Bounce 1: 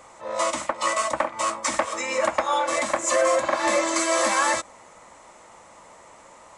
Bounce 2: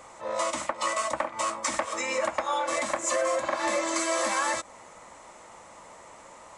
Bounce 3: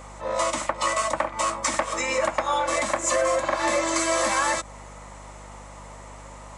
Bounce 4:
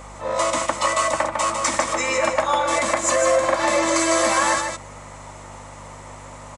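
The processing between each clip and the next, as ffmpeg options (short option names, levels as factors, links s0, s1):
-af "acompressor=threshold=0.0398:ratio=2"
-af "aeval=exprs='val(0)+0.00398*(sin(2*PI*50*n/s)+sin(2*PI*2*50*n/s)/2+sin(2*PI*3*50*n/s)/3+sin(2*PI*4*50*n/s)/4+sin(2*PI*5*50*n/s)/5)':c=same,volume=1.58"
-af "aecho=1:1:152:0.531,volume=1.41"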